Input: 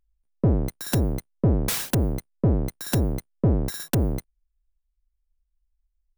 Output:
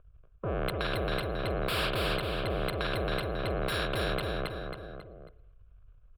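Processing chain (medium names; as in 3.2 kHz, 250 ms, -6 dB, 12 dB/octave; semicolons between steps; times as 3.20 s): level-controlled noise filter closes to 1.9 kHz, open at -19 dBFS; bass shelf 210 Hz -6.5 dB; transient shaper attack -11 dB, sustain +9 dB; reverse; compression, threshold -28 dBFS, peak gain reduction 8.5 dB; reverse; Chebyshev shaper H 5 -8 dB, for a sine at -17.5 dBFS; distance through air 480 m; static phaser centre 1.3 kHz, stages 8; feedback delay 272 ms, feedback 33%, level -4 dB; on a send at -15.5 dB: reverberation RT60 0.80 s, pre-delay 46 ms; on the sum: spectrum-flattening compressor 2:1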